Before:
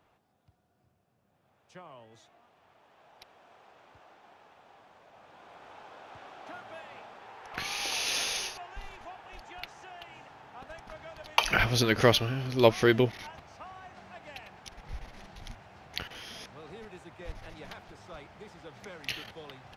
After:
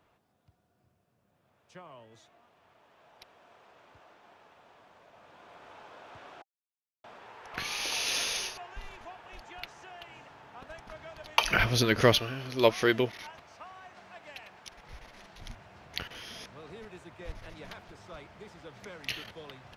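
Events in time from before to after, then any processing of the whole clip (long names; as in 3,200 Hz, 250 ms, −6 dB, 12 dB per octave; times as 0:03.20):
0:06.42–0:07.04: silence
0:12.19–0:15.39: low-shelf EQ 240 Hz −9.5 dB
whole clip: notch filter 790 Hz, Q 12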